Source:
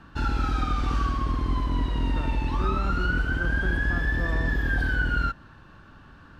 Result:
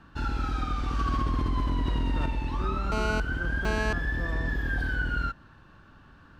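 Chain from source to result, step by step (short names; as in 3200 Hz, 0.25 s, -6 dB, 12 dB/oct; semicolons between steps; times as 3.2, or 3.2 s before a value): 0.99–2.26 fast leveller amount 100%; 2.92–3.93 GSM buzz -27 dBFS; gain -4 dB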